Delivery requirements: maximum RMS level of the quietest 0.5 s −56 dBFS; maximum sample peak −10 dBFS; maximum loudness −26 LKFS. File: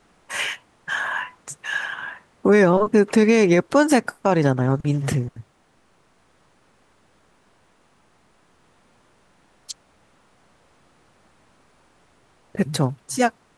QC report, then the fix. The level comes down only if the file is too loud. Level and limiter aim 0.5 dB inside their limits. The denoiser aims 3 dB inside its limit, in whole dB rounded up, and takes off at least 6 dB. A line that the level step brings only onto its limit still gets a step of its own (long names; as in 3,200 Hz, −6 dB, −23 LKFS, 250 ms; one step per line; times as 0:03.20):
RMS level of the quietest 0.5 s −60 dBFS: in spec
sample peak −6.0 dBFS: out of spec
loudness −20.5 LKFS: out of spec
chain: level −6 dB